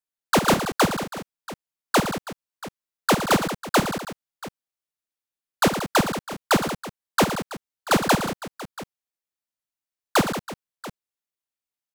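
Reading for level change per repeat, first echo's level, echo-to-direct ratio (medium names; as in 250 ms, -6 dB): no regular repeats, -11.0 dB, -5.5 dB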